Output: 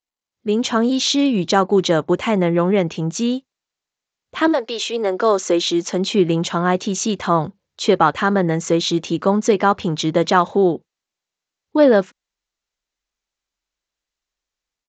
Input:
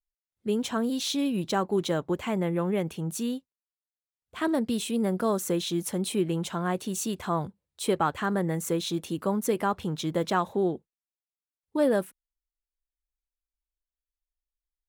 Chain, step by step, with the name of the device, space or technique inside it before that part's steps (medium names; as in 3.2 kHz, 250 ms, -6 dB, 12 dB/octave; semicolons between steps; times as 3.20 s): 4.52–6.12 s: high-pass 470 Hz -> 170 Hz 24 dB/octave; Bluetooth headset (high-pass 160 Hz 6 dB/octave; level rider gain up to 9 dB; resampled via 16 kHz; trim +3 dB; SBC 64 kbps 16 kHz)